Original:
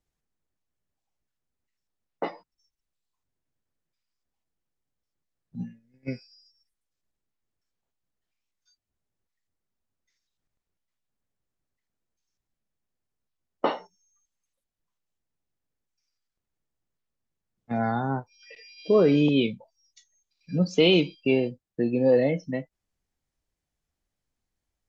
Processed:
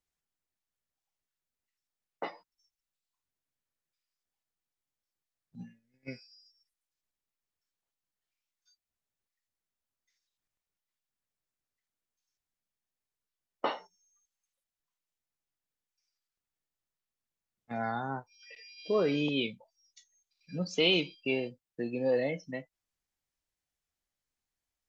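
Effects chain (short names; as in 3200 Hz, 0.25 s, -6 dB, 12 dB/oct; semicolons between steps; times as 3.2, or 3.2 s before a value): tilt shelf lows -5 dB, about 640 Hz; gain -7 dB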